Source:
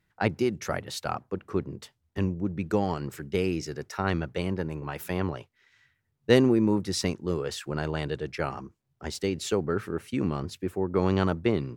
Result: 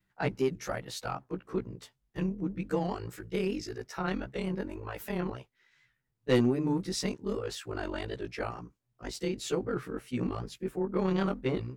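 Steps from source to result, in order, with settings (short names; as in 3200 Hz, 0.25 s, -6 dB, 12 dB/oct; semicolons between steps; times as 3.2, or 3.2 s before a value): short-time reversal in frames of 32 ms; soft clip -14.5 dBFS, distortion -19 dB; record warp 78 rpm, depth 100 cents; gain -1 dB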